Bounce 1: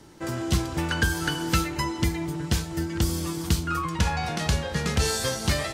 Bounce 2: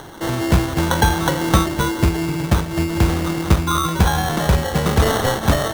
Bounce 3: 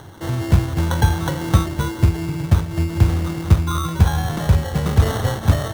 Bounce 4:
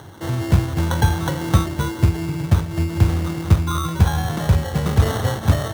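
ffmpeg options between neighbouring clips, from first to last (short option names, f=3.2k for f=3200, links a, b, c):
-filter_complex "[0:a]acrossover=split=390|520|2700[a][b][c][d];[d]acompressor=mode=upward:threshold=-37dB:ratio=2.5[e];[a][b][c][e]amix=inputs=4:normalize=0,acrusher=samples=18:mix=1:aa=0.000001,volume=8.5dB"
-af "equalizer=f=99:w=1.3:g=13.5,volume=-6.5dB"
-af "highpass=60"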